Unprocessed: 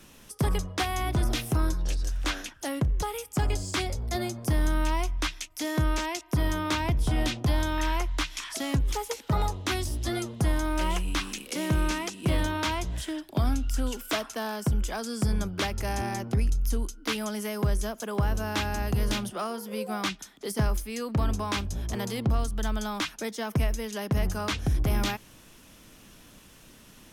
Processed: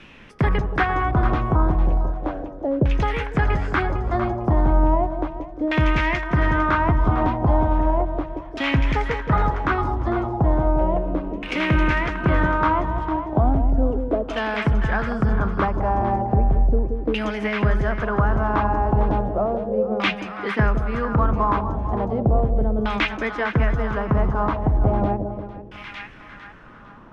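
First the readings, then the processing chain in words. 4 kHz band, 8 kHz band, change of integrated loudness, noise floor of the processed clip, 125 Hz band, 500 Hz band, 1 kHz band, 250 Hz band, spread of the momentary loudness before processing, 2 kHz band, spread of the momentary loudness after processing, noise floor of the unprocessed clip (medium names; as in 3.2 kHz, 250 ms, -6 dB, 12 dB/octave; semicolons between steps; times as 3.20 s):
-2.0 dB, under -15 dB, +7.5 dB, -41 dBFS, +7.0 dB, +10.0 dB, +11.0 dB, +7.5 dB, 5 LU, +8.5 dB, 7 LU, -53 dBFS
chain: two-band feedback delay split 830 Hz, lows 176 ms, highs 453 ms, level -6.5 dB; LFO low-pass saw down 0.35 Hz 480–2600 Hz; trim +6 dB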